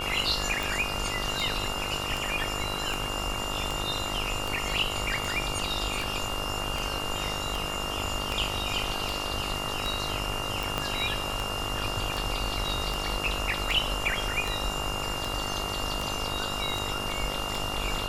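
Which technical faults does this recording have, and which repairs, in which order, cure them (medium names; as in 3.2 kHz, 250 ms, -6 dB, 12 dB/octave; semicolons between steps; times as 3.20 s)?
buzz 50 Hz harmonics 28 -36 dBFS
tick 78 rpm
whine 2.8 kHz -34 dBFS
10.78 s: pop -13 dBFS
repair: de-click; de-hum 50 Hz, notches 28; band-stop 2.8 kHz, Q 30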